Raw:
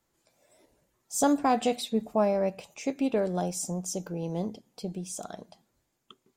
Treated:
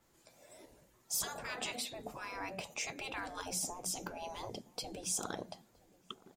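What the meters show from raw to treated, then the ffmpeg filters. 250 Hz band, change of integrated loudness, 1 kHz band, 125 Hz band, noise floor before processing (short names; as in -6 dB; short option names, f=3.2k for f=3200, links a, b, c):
-19.5 dB, -10.0 dB, -12.5 dB, -15.5 dB, -78 dBFS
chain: -filter_complex "[0:a]alimiter=limit=-20dB:level=0:latency=1:release=385,afftfilt=real='re*lt(hypot(re,im),0.0398)':imag='im*lt(hypot(re,im),0.0398)':win_size=1024:overlap=0.75,asplit=2[a][b];[b]adelay=969,lowpass=f=840:p=1,volume=-21dB,asplit=2[c][d];[d]adelay=969,lowpass=f=840:p=1,volume=0.36,asplit=2[e][f];[f]adelay=969,lowpass=f=840:p=1,volume=0.36[g];[c][e][g]amix=inputs=3:normalize=0[h];[a][h]amix=inputs=2:normalize=0,adynamicequalizer=threshold=0.00158:dfrequency=3300:dqfactor=0.7:tfrequency=3300:tqfactor=0.7:attack=5:release=100:ratio=0.375:range=2.5:mode=cutabove:tftype=highshelf,volume=5.5dB"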